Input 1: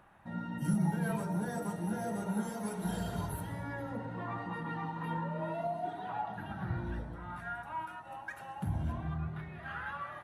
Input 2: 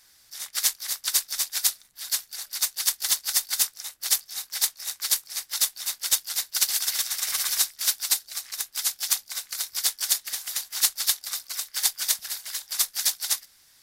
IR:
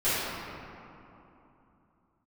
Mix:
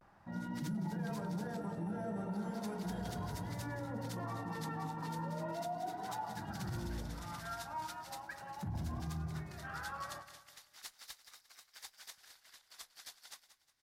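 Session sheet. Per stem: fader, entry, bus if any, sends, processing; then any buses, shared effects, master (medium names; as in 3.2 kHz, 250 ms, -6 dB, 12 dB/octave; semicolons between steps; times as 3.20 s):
-1.5 dB, 0.00 s, no send, echo send -13 dB, none
-17.0 dB, 0.00 s, muted 1.58–2.22 s, no send, echo send -13 dB, none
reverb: none
echo: feedback delay 180 ms, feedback 37%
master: low-pass 1.7 kHz 6 dB/octave; vibrato 0.37 Hz 48 cents; peak limiter -32 dBFS, peak gain reduction 8.5 dB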